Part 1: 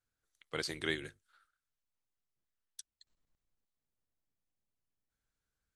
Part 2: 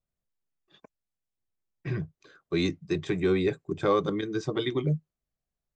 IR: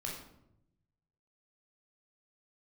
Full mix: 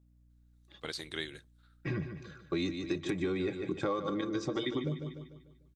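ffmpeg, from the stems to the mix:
-filter_complex "[0:a]equalizer=f=3.8k:w=5.5:g=9.5,adelay=300,volume=-3.5dB[a];[1:a]aecho=1:1:3.6:0.43,aeval=exprs='val(0)+0.000631*(sin(2*PI*60*n/s)+sin(2*PI*2*60*n/s)/2+sin(2*PI*3*60*n/s)/3+sin(2*PI*4*60*n/s)/4+sin(2*PI*5*60*n/s)/5)':c=same,volume=1dB,asplit=2[b][c];[c]volume=-11dB,aecho=0:1:148|296|444|592|740|888:1|0.43|0.185|0.0795|0.0342|0.0147[d];[a][b][d]amix=inputs=3:normalize=0,acompressor=threshold=-30dB:ratio=6"

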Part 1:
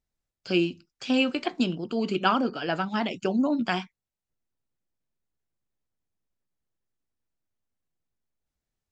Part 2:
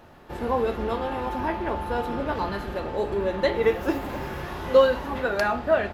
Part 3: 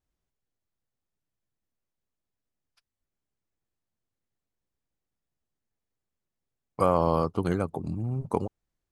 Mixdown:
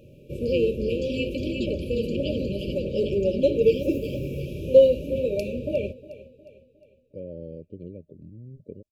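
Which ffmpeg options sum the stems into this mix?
-filter_complex "[0:a]volume=-7dB,asplit=2[a][b];[b]volume=-5dB[c];[1:a]equalizer=f=125:t=o:w=1:g=11,equalizer=f=500:t=o:w=1:g=5,equalizer=f=2k:t=o:w=1:g=6,equalizer=f=4k:t=o:w=1:g=-8,volume=-2.5dB,asplit=2[d][e];[e]volume=-17dB[f];[2:a]lowpass=1.4k,adelay=350,volume=-12.5dB[g];[c][f]amix=inputs=2:normalize=0,aecho=0:1:359|718|1077|1436|1795|2154:1|0.44|0.194|0.0852|0.0375|0.0165[h];[a][d][g][h]amix=inputs=4:normalize=0,afftfilt=real='re*(1-between(b*sr/4096,620,2300))':imag='im*(1-between(b*sr/4096,620,2300))':win_size=4096:overlap=0.75"

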